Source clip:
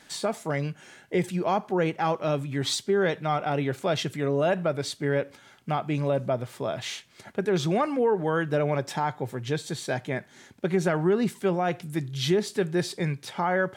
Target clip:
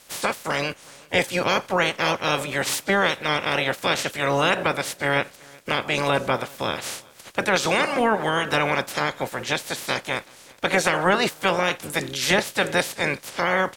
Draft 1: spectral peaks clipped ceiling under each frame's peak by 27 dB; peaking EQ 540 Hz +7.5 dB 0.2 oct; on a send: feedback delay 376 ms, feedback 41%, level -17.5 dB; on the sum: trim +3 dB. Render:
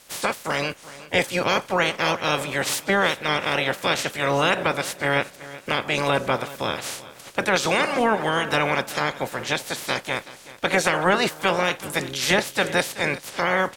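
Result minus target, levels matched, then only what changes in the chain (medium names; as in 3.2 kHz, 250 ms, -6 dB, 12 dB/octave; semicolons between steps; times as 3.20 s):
echo-to-direct +8.5 dB
change: feedback delay 376 ms, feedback 41%, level -26 dB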